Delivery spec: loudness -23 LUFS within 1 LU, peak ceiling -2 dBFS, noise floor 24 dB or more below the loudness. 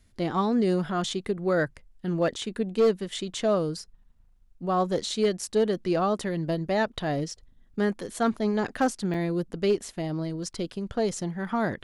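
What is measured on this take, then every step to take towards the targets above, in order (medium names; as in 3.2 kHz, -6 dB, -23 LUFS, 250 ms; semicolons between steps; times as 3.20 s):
clipped samples 0.3%; clipping level -16.0 dBFS; dropouts 1; longest dropout 3.2 ms; loudness -27.5 LUFS; peak level -16.0 dBFS; loudness target -23.0 LUFS
-> clip repair -16 dBFS; interpolate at 9.14 s, 3.2 ms; trim +4.5 dB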